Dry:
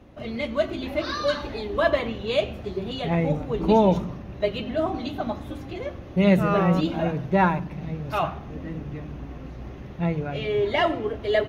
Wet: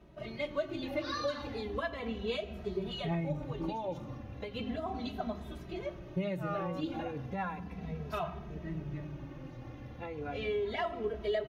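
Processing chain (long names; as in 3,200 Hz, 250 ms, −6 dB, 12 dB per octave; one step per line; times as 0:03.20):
downward compressor 10 to 1, threshold −24 dBFS, peak gain reduction 12 dB
barber-pole flanger 2.7 ms −0.35 Hz
level −4 dB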